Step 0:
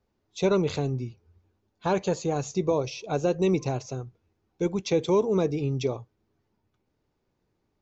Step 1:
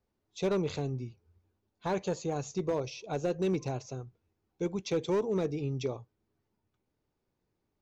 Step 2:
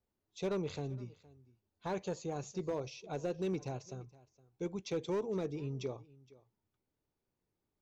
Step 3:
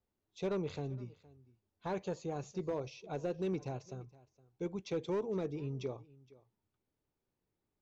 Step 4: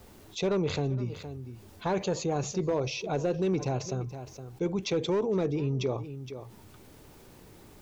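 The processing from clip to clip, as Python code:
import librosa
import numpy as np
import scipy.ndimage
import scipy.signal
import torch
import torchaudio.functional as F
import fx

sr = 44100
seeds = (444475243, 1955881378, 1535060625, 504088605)

y1 = np.clip(x, -10.0 ** (-17.5 / 20.0), 10.0 ** (-17.5 / 20.0))
y1 = F.gain(torch.from_numpy(y1), -6.0).numpy()
y2 = y1 + 10.0 ** (-21.5 / 20.0) * np.pad(y1, (int(466 * sr / 1000.0), 0))[:len(y1)]
y2 = F.gain(torch.from_numpy(y2), -6.0).numpy()
y3 = fx.high_shelf(y2, sr, hz=6300.0, db=-10.5)
y4 = fx.env_flatten(y3, sr, amount_pct=50)
y4 = F.gain(torch.from_numpy(y4), 7.0).numpy()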